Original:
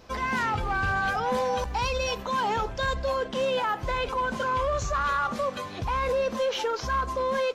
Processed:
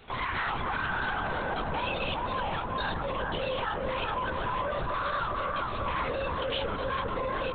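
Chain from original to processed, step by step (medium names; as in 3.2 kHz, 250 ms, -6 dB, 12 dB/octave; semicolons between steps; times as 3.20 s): Chebyshev shaper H 5 -22 dB, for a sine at -18.5 dBFS; LPC vocoder at 8 kHz whisper; on a send: bucket-brigade echo 405 ms, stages 4096, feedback 51%, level -3 dB; on the sum: peak limiter -19 dBFS, peak gain reduction 6.5 dB; treble shelf 2.3 kHz +10 dB; trim -5 dB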